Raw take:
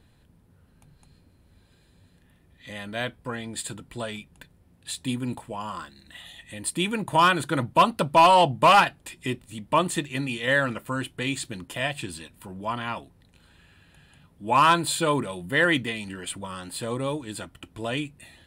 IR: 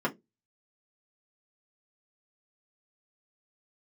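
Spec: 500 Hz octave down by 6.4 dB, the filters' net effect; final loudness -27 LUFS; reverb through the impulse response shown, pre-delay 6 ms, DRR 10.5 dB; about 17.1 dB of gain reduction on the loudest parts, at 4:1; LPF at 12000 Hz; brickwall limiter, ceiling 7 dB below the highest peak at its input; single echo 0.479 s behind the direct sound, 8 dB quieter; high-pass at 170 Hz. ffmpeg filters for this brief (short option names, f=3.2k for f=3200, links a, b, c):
-filter_complex "[0:a]highpass=170,lowpass=12k,equalizer=f=500:t=o:g=-8.5,acompressor=threshold=-36dB:ratio=4,alimiter=level_in=3.5dB:limit=-24dB:level=0:latency=1,volume=-3.5dB,aecho=1:1:479:0.398,asplit=2[a][b];[1:a]atrim=start_sample=2205,adelay=6[c];[b][c]afir=irnorm=-1:irlink=0,volume=-20dB[d];[a][d]amix=inputs=2:normalize=0,volume=12dB"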